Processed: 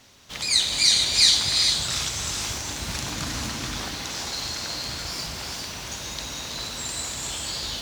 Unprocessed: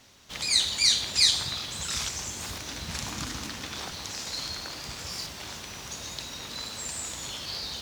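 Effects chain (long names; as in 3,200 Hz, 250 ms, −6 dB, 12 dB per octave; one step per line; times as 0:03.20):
reverb whose tail is shaped and stops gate 480 ms rising, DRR 1 dB
level +2.5 dB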